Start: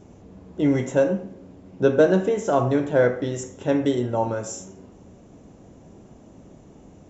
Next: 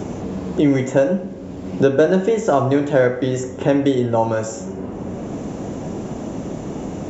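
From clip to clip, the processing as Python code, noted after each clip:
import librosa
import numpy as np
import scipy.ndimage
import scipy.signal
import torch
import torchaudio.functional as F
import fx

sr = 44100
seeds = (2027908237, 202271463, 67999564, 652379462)

y = fx.band_squash(x, sr, depth_pct=70)
y = y * librosa.db_to_amplitude(5.0)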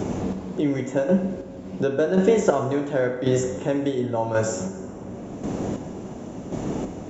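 y = fx.chopper(x, sr, hz=0.92, depth_pct=60, duty_pct=30)
y = fx.rev_plate(y, sr, seeds[0], rt60_s=1.4, hf_ratio=0.85, predelay_ms=0, drr_db=9.0)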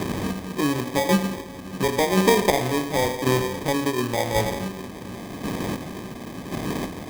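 y = fx.sample_hold(x, sr, seeds[1], rate_hz=1400.0, jitter_pct=0)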